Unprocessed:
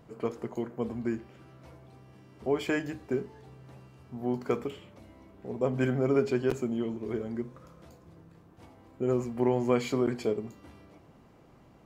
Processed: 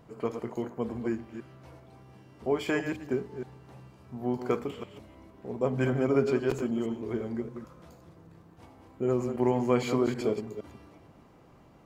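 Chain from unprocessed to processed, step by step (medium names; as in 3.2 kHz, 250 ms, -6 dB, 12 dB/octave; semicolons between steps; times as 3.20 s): chunks repeated in reverse 156 ms, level -8 dB; peaking EQ 1 kHz +2 dB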